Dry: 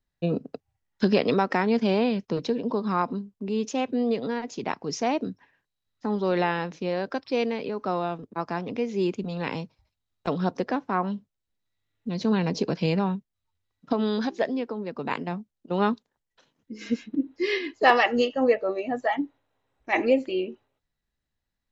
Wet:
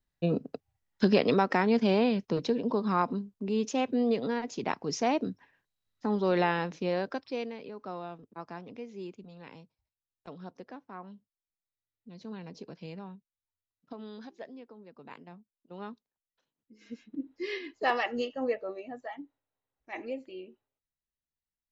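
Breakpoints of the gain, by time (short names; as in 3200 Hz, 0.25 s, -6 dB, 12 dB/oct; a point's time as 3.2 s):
6.97 s -2 dB
7.53 s -12 dB
8.51 s -12 dB
9.41 s -18.5 dB
16.84 s -18.5 dB
17.24 s -9.5 dB
18.61 s -9.5 dB
19.14 s -16 dB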